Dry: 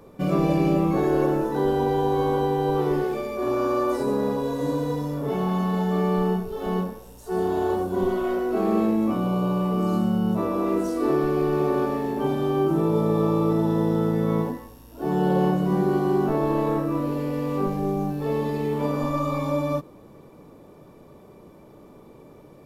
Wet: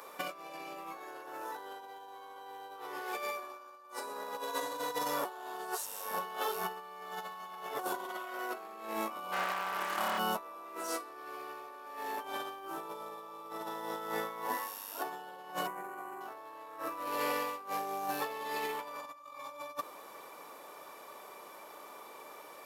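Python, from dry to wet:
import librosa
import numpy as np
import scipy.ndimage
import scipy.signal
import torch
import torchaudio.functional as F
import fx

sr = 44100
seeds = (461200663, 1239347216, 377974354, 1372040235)

y = fx.clip_hard(x, sr, threshold_db=-27.0, at=(9.31, 10.18), fade=0.02)
y = fx.band_shelf(y, sr, hz=4300.0, db=-15.5, octaves=1.1, at=(15.67, 16.21))
y = fx.edit(y, sr, fx.reverse_span(start_s=5.25, length_s=2.54), tone=tone)
y = scipy.signal.sosfilt(scipy.signal.cheby1(2, 1.0, 1100.0, 'highpass', fs=sr, output='sos'), y)
y = fx.high_shelf(y, sr, hz=8300.0, db=5.0)
y = fx.over_compress(y, sr, threshold_db=-41.0, ratio=-0.5)
y = y * 10.0 ** (2.5 / 20.0)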